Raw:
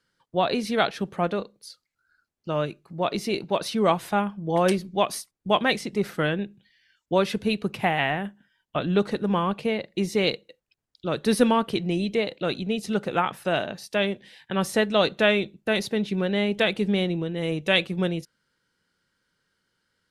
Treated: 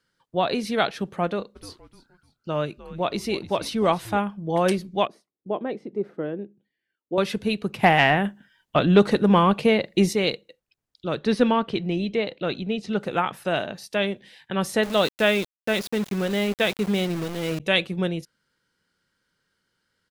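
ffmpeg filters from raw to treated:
ffmpeg -i in.wav -filter_complex "[0:a]asplit=3[link_01][link_02][link_03];[link_01]afade=type=out:start_time=1.55:duration=0.02[link_04];[link_02]asplit=4[link_05][link_06][link_07][link_08];[link_06]adelay=302,afreqshift=-110,volume=-16.5dB[link_09];[link_07]adelay=604,afreqshift=-220,volume=-26.1dB[link_10];[link_08]adelay=906,afreqshift=-330,volume=-35.8dB[link_11];[link_05][link_09][link_10][link_11]amix=inputs=4:normalize=0,afade=type=in:start_time=1.55:duration=0.02,afade=type=out:start_time=4.17:duration=0.02[link_12];[link_03]afade=type=in:start_time=4.17:duration=0.02[link_13];[link_04][link_12][link_13]amix=inputs=3:normalize=0,asettb=1/sr,asplit=3[link_14][link_15][link_16];[link_14]atrim=end=5.074[link_17];[link_15]atrim=start=5.07:end=7.18,asetpts=PTS-STARTPTS,afade=type=in:duration=0.004:curve=qsin,afade=type=out:start_time=2.106:duration=0.004:curve=qsin,bandpass=frequency=370:width_type=q:width=1.5[link_18];[link_16]atrim=start=7.176[link_19];[link_17][link_18]acrossfade=duration=0.004:curve1=hsin:curve2=qsin[link_20];[link_20][link_19]acrossfade=duration=0.004:curve1=qsin:curve2=hsin,asettb=1/sr,asplit=3[link_21][link_22][link_23];[link_21]atrim=end=7.834[link_24];[link_22]atrim=start=7.83:end=10.13,asetpts=PTS-STARTPTS,afade=type=in:duration=0.004:curve=qsin,afade=type=out:start_time=2.296:duration=0.004:curve=qsin,acontrast=81[link_25];[link_23]atrim=start=10.126[link_26];[link_24][link_25]acrossfade=duration=0.004:curve1=hsin:curve2=qsin[link_27];[link_27][link_26]acrossfade=duration=0.004:curve1=qsin:curve2=hsin,asettb=1/sr,asplit=3[link_28][link_29][link_30];[link_28]atrim=end=11.154[link_31];[link_29]atrim=start=11.15:end=13,asetpts=PTS-STARTPTS,afade=type=in:duration=0.004:curve=qsin,afade=type=out:start_time=1.846:duration=0.004:curve=qsin,lowpass=4700[link_32];[link_30]atrim=start=12.996[link_33];[link_31][link_32]acrossfade=duration=0.004:curve1=hsin:curve2=qsin[link_34];[link_34][link_33]acrossfade=duration=0.004:curve1=qsin:curve2=hsin,asettb=1/sr,asplit=3[link_35][link_36][link_37];[link_35]atrim=end=14.834[link_38];[link_36]atrim=start=14.83:end=17.6,asetpts=PTS-STARTPTS,afade=type=in:duration=0.004:curve=qsin,afade=type=out:start_time=2.766:duration=0.004:curve=qsin,aeval=exprs='val(0)*gte(abs(val(0)),0.0299)':channel_layout=same[link_39];[link_37]atrim=start=17.596[link_40];[link_38][link_39]acrossfade=duration=0.004:curve1=hsin:curve2=qsin[link_41];[link_41][link_40]acrossfade=duration=0.004:curve1=qsin:curve2=hsin" out.wav

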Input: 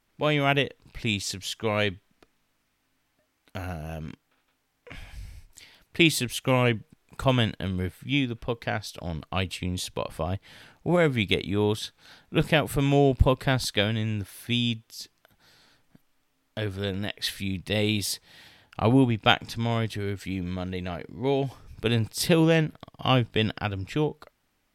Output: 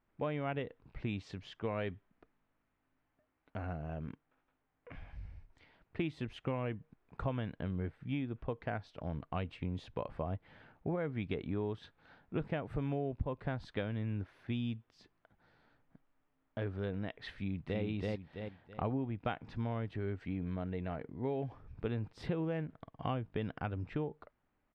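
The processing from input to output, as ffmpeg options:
ffmpeg -i in.wav -filter_complex "[0:a]asplit=2[link_01][link_02];[link_02]afade=type=in:start_time=17.35:duration=0.01,afade=type=out:start_time=17.82:duration=0.01,aecho=0:1:330|660|990|1320:1|0.3|0.09|0.027[link_03];[link_01][link_03]amix=inputs=2:normalize=0,deesser=0.45,lowpass=1600,acompressor=threshold=-27dB:ratio=6,volume=-5.5dB" out.wav

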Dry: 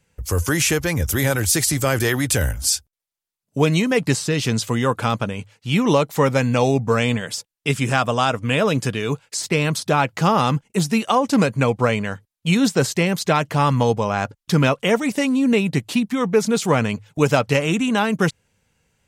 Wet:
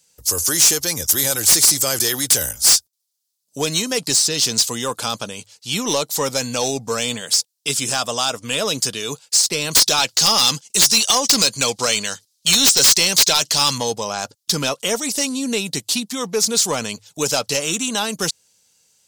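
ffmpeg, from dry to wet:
ffmpeg -i in.wav -filter_complex "[0:a]asettb=1/sr,asplit=3[link_01][link_02][link_03];[link_01]atrim=end=9.714[link_04];[link_02]atrim=start=9.71:end=13.78,asetpts=PTS-STARTPTS,afade=type=in:duration=0.004:curve=qsin,afade=type=out:start_time=4.066:duration=0.004:curve=qsin,equalizer=frequency=5000:width=0.45:gain=12[link_05];[link_03]atrim=start=13.776[link_06];[link_04][link_05]acrossfade=duration=0.004:curve1=hsin:curve2=qsin[link_07];[link_07][link_06]acrossfade=duration=0.004:curve1=qsin:curve2=hsin,highpass=frequency=400:poles=1,highshelf=frequency=3200:width_type=q:width=1.5:gain=13.5,acontrast=64,volume=-7.5dB" out.wav

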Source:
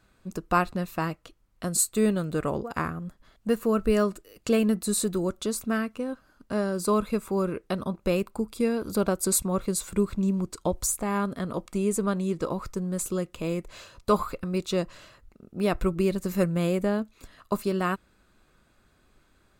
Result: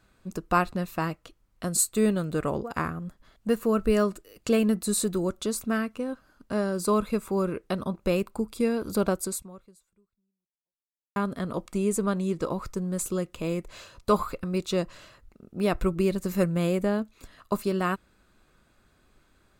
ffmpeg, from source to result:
ffmpeg -i in.wav -filter_complex "[0:a]asplit=2[link_01][link_02];[link_01]atrim=end=11.16,asetpts=PTS-STARTPTS,afade=type=out:start_time=9.16:duration=2:curve=exp[link_03];[link_02]atrim=start=11.16,asetpts=PTS-STARTPTS,afade=type=in:duration=0.004:curve=hsin[link_04];[link_03][link_04]concat=n=2:v=0:a=1" out.wav

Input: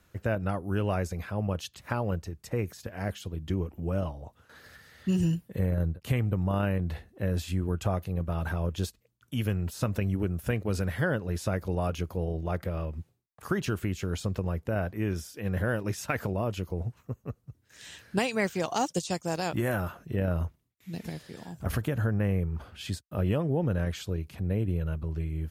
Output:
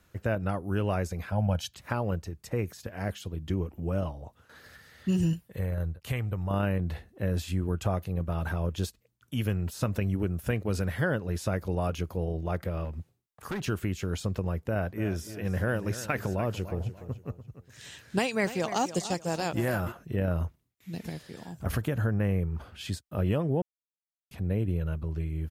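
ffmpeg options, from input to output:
ffmpeg -i in.wav -filter_complex "[0:a]asettb=1/sr,asplit=3[link_01][link_02][link_03];[link_01]atrim=end=1.324[link_04];[link_02]atrim=start=1.32:end=1.74,asetpts=PTS-STARTPTS,afade=type=in:duration=0.004:curve=qsin,afade=type=out:start_time=0.416:duration=0.004:curve=qsin,aecho=1:1:1.3:0.87,atrim=end_sample=18522[link_05];[link_03]atrim=start=1.736[link_06];[link_04][link_05]acrossfade=duration=0.004:curve1=hsin:curve2=qsin[link_07];[link_07][link_06]acrossfade=duration=0.004:curve1=qsin:curve2=hsin,asettb=1/sr,asplit=3[link_08][link_09][link_10];[link_08]atrim=end=5.334[link_11];[link_09]atrim=start=5.33:end=6.51,asetpts=PTS-STARTPTS,afade=type=in:duration=0.004:curve=qsin,afade=type=out:start_time=1.176:duration=0.004:curve=qsin,equalizer=frequency=240:width_type=o:width=2:gain=-8[link_12];[link_10]atrim=start=6.506[link_13];[link_11][link_12]acrossfade=duration=0.004:curve1=hsin:curve2=qsin[link_14];[link_14][link_13]acrossfade=duration=0.004:curve1=qsin:curve2=hsin,asettb=1/sr,asplit=3[link_15][link_16][link_17];[link_15]atrim=end=12.854[link_18];[link_16]atrim=start=12.85:end=13.65,asetpts=PTS-STARTPTS,afade=type=in:duration=0.004:curve=qsin,afade=type=out:start_time=0.796:duration=0.004:curve=qsin,asoftclip=type=hard:threshold=-30dB[link_19];[link_17]atrim=start=13.646[link_20];[link_18][link_19]acrossfade=duration=0.004:curve1=hsin:curve2=qsin[link_21];[link_21][link_20]acrossfade=duration=0.004:curve1=qsin:curve2=hsin,asplit=3[link_22][link_23][link_24];[link_22]afade=type=out:start_time=14.96:duration=0.02[link_25];[link_23]aecho=1:1:292|584|876:0.224|0.0739|0.0244,afade=type=in:start_time=14.96:duration=0.02,afade=type=out:start_time=19.91:duration=0.02[link_26];[link_24]afade=type=in:start_time=19.91:duration=0.02[link_27];[link_25][link_26][link_27]amix=inputs=3:normalize=0,asplit=3[link_28][link_29][link_30];[link_28]atrim=end=23.62,asetpts=PTS-STARTPTS,afade=type=out:start_time=23.616:duration=0.004:curve=hsin[link_31];[link_29]atrim=start=23.62:end=24.31,asetpts=PTS-STARTPTS,volume=0[link_32];[link_30]atrim=start=24.31,asetpts=PTS-STARTPTS,afade=type=in:duration=0.004:curve=hsin[link_33];[link_31][link_32][link_33]concat=n=3:v=0:a=1" out.wav

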